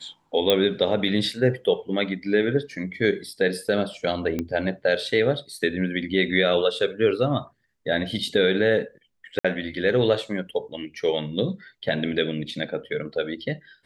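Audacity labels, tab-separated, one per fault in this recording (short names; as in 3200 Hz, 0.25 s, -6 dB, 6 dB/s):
0.500000	0.500000	pop -6 dBFS
4.390000	4.390000	pop -14 dBFS
9.390000	9.450000	gap 55 ms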